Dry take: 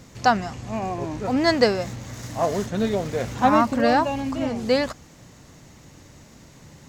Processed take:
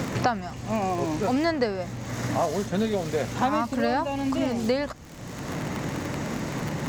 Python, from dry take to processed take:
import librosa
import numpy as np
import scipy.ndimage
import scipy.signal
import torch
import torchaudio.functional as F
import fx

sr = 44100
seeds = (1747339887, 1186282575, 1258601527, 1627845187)

y = fx.dmg_crackle(x, sr, seeds[0], per_s=67.0, level_db=-35.0)
y = fx.band_squash(y, sr, depth_pct=100)
y = F.gain(torch.from_numpy(y), -3.5).numpy()